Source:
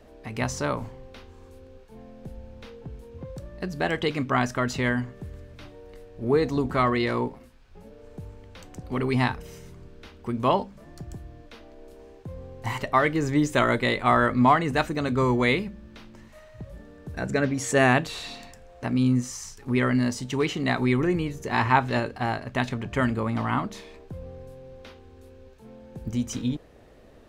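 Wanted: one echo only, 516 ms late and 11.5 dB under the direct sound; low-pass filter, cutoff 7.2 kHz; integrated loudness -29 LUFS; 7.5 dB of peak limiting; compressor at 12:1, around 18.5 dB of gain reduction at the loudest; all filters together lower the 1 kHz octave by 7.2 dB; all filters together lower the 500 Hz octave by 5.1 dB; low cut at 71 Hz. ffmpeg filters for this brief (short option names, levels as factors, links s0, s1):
-af "highpass=71,lowpass=7200,equalizer=f=500:t=o:g=-4.5,equalizer=f=1000:t=o:g=-8,acompressor=threshold=0.0141:ratio=12,alimiter=level_in=2.82:limit=0.0631:level=0:latency=1,volume=0.355,aecho=1:1:516:0.266,volume=5.96"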